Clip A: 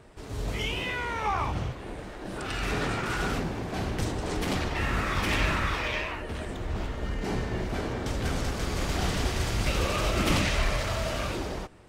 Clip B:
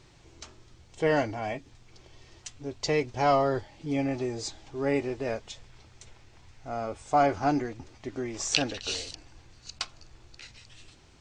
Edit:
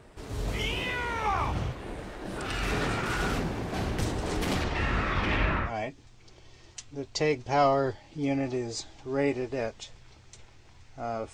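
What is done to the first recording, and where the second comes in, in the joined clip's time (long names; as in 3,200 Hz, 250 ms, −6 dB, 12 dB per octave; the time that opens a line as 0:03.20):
clip A
0:04.63–0:05.73: low-pass filter 7,600 Hz → 1,700 Hz
0:05.67: continue with clip B from 0:01.35, crossfade 0.12 s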